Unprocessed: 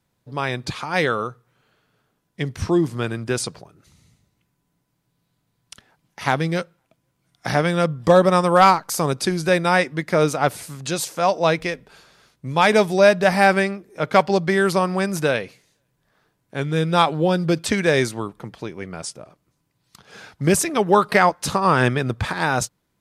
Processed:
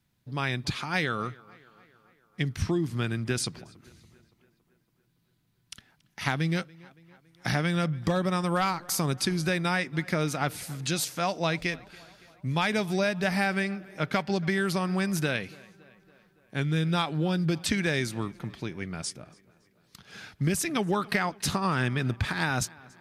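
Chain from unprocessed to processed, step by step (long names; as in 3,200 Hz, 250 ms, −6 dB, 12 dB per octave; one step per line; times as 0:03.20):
graphic EQ with 10 bands 500 Hz −9 dB, 1,000 Hz −6 dB, 8,000 Hz −4 dB
downward compressor, threshold −23 dBFS, peak gain reduction 9.5 dB
tape delay 282 ms, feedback 64%, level −22 dB, low-pass 3,900 Hz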